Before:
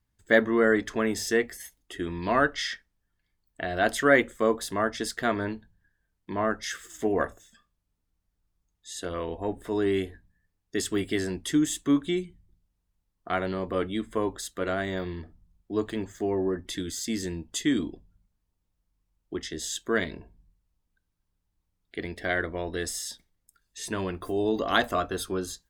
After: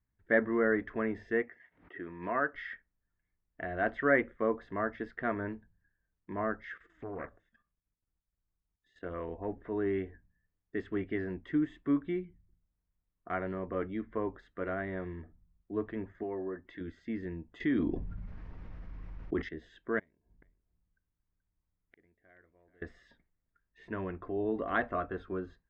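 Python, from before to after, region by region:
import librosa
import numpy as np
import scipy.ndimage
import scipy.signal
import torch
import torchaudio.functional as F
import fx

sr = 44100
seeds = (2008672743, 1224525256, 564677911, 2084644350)

y = fx.chain(x, sr, fx.bandpass_edges(low_hz=110.0, high_hz=2800.0),
    fx.low_shelf(hz=360.0, db=-8.0),
    fx.pre_swell(db_per_s=120.0), at=(1.42, 2.54))
y = fx.chain(y, sr, fx.high_shelf(hz=5100.0, db=8.5),
    fx.level_steps(step_db=11),
    fx.doppler_dist(depth_ms=0.55), at=(6.74, 9.03))
y = fx.chain(y, sr, fx.low_shelf(hz=270.0, db=-11.0),
    fx.notch(hz=2400.0, q=11.0), at=(16.23, 16.81))
y = fx.chain(y, sr, fx.peak_eq(hz=5500.0, db=10.0, octaves=0.93),
    fx.env_flatten(amount_pct=70), at=(17.6, 19.49))
y = fx.chain(y, sr, fx.gate_flip(shuts_db=-31.0, range_db=-28),
    fx.echo_single(ms=430, db=-13.0), at=(19.99, 22.82))
y = scipy.signal.sosfilt(scipy.signal.cheby1(3, 1.0, 2000.0, 'lowpass', fs=sr, output='sos'), y)
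y = fx.notch(y, sr, hz=850.0, q=18.0)
y = y * librosa.db_to_amplitude(-6.0)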